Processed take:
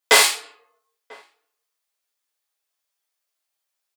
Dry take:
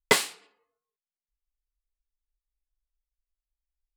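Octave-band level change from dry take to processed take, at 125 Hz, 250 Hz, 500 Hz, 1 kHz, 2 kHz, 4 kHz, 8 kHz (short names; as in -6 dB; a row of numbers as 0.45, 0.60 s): under -10 dB, -2.5 dB, +6.0 dB, +9.0 dB, +9.5 dB, +11.5 dB, +11.5 dB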